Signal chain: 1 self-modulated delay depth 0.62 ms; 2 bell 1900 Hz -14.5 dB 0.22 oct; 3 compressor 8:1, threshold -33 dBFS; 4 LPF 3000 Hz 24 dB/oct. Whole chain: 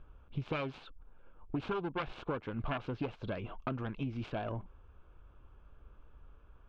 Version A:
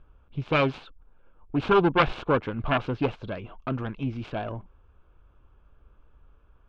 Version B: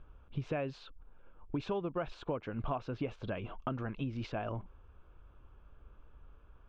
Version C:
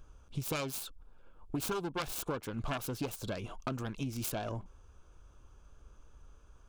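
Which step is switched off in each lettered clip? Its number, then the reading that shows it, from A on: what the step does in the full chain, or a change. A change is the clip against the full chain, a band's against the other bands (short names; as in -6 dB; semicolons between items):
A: 3, mean gain reduction 6.0 dB; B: 1, 2 kHz band -2.5 dB; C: 4, 4 kHz band +6.5 dB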